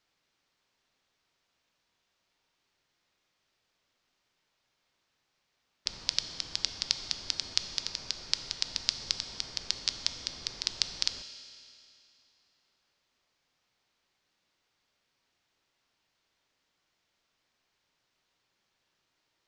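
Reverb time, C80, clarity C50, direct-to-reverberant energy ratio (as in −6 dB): 2.7 s, 11.0 dB, 10.0 dB, 9.0 dB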